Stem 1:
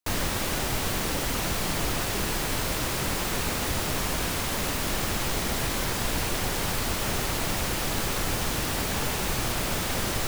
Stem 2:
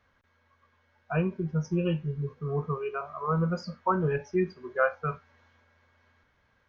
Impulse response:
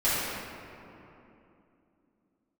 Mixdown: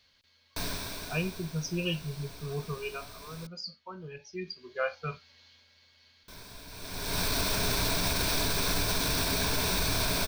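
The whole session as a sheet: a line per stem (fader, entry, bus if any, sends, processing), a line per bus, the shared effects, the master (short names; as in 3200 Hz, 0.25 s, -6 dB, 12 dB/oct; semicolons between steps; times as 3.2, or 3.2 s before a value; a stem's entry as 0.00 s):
+1.0 dB, 0.50 s, muted 3.47–6.28, no send, ripple EQ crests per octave 1.6, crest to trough 9 dB; auto duck -23 dB, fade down 1.55 s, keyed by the second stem
2.97 s -5 dB -> 3.31 s -16.5 dB -> 4.14 s -16.5 dB -> 4.87 s -4 dB, 0.00 s, no send, resonant high shelf 2100 Hz +13.5 dB, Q 1.5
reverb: off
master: bell 4500 Hz +12 dB 0.31 oct; limiter -19 dBFS, peak gain reduction 7.5 dB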